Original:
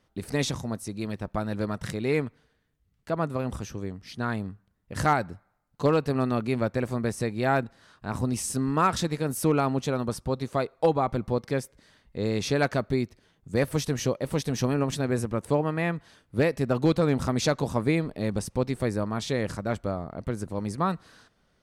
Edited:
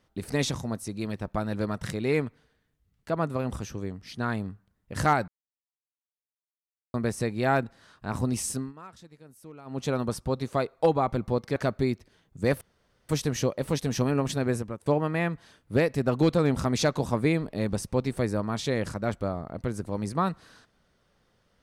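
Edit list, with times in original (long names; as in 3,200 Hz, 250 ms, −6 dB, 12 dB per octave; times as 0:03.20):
0:05.28–0:06.94: silence
0:08.49–0:09.89: duck −23 dB, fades 0.24 s
0:11.56–0:12.67: remove
0:13.72: splice in room tone 0.48 s
0:15.13–0:15.49: fade out, to −20.5 dB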